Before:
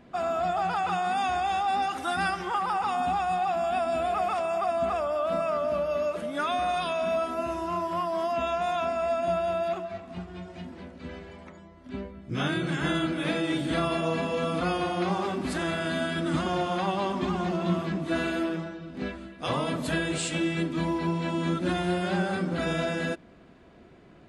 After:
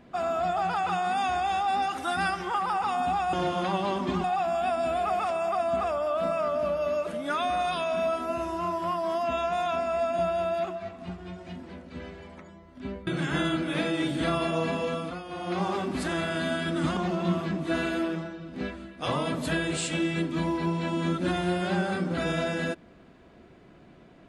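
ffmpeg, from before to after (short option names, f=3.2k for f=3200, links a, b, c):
-filter_complex "[0:a]asplit=7[a][b][c][d][e][f][g];[a]atrim=end=3.332[h];[b]atrim=start=16.468:end=17.382[i];[c]atrim=start=3.328:end=12.162[j];[d]atrim=start=12.568:end=14.72,asetpts=PTS-STARTPTS,afade=t=out:st=1.742:d=0.41:silence=0.211349[k];[e]atrim=start=14.72:end=14.75,asetpts=PTS-STARTPTS,volume=-13.5dB[l];[f]atrim=start=14.75:end=16.472,asetpts=PTS-STARTPTS,afade=t=in:d=0.41:silence=0.211349[m];[g]atrim=start=17.378[n];[h][i]acrossfade=d=0.004:c1=hsin:c2=hsin[o];[o][j]acrossfade=d=0.004:c1=hsin:c2=hsin[p];[k][l][m]concat=n=3:v=0:a=1[q];[p][q]acrossfade=d=0.004:c1=hsin:c2=hsin[r];[r][n]acrossfade=d=0.004:c1=hsin:c2=hsin"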